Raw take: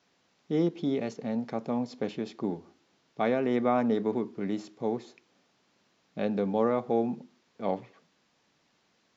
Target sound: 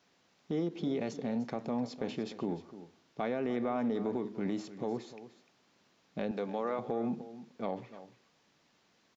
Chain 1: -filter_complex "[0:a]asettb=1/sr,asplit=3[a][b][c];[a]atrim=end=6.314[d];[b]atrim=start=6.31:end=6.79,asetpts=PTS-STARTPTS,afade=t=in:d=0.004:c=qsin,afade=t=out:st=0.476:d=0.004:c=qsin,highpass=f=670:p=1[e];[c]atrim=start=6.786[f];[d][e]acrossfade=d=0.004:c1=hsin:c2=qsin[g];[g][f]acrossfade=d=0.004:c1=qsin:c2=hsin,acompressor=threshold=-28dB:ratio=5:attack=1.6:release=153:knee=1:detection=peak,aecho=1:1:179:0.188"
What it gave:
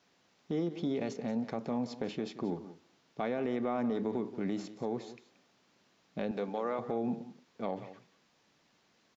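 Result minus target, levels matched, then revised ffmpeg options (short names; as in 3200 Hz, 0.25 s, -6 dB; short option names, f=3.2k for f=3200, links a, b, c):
echo 0.121 s early
-filter_complex "[0:a]asettb=1/sr,asplit=3[a][b][c];[a]atrim=end=6.314[d];[b]atrim=start=6.31:end=6.79,asetpts=PTS-STARTPTS,afade=t=in:d=0.004:c=qsin,afade=t=out:st=0.476:d=0.004:c=qsin,highpass=f=670:p=1[e];[c]atrim=start=6.786[f];[d][e]acrossfade=d=0.004:c1=hsin:c2=qsin[g];[g][f]acrossfade=d=0.004:c1=qsin:c2=hsin,acompressor=threshold=-28dB:ratio=5:attack=1.6:release=153:knee=1:detection=peak,aecho=1:1:300:0.188"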